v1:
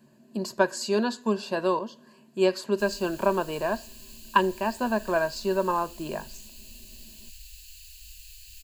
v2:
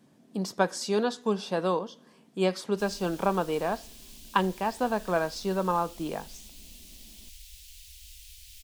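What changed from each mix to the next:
master: remove rippled EQ curve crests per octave 1.4, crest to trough 11 dB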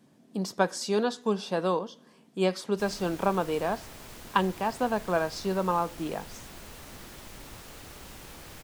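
background: remove inverse Chebyshev band-stop 190–1000 Hz, stop band 60 dB

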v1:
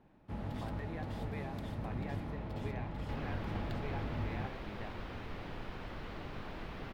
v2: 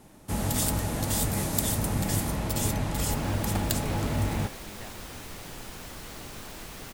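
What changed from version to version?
first sound +11.0 dB; master: remove distance through air 360 m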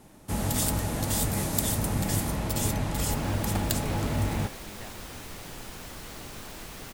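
no change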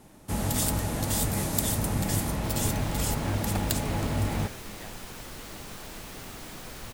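second sound: entry -0.65 s

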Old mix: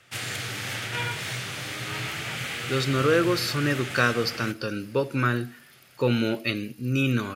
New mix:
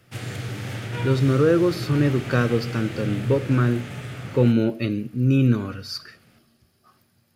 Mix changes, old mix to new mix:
speech: entry -1.65 s; master: add tilt shelf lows +8 dB, about 740 Hz

